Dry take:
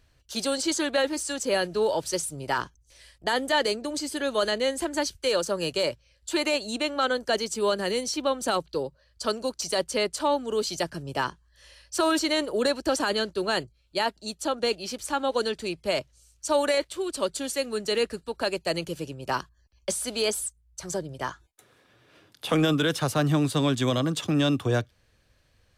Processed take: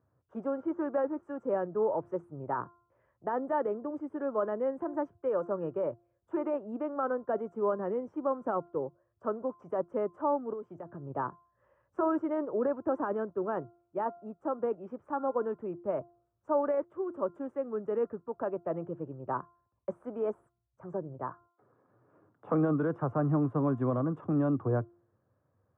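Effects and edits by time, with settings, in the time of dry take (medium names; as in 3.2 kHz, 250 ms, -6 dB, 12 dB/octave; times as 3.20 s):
0.60–1.23 s: low-pass 3.5 kHz
10.53–11.10 s: compression, threshold -32 dBFS
whole clip: elliptic band-pass 100–1200 Hz, stop band 50 dB; de-hum 347 Hz, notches 4; trim -4 dB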